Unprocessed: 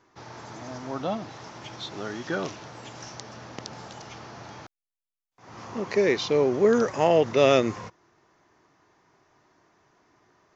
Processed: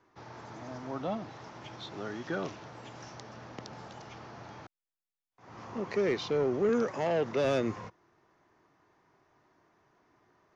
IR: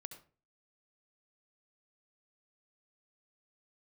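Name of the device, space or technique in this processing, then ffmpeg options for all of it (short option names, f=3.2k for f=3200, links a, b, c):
one-band saturation: -filter_complex "[0:a]acrossover=split=260|4700[a][b][c];[b]asoftclip=type=tanh:threshold=-21dB[d];[a][d][c]amix=inputs=3:normalize=0,asettb=1/sr,asplit=3[e][f][g];[e]atrim=end=6.694[h];[f]atrim=start=6.69:end=7.45,asetpts=PTS-STARTPTS,afade=t=in:d=0.004:c=qsin,afade=t=out:st=0.756:d=0.004:c=qsin,highpass=130[i];[g]atrim=start=7.446[j];[h][i]acrossfade=d=0.004:c1=hsin:c2=qsin[k];[k][j]acrossfade=d=0.004:c1=qsin:c2=hsin,highshelf=f=5k:g=-11,volume=-4dB"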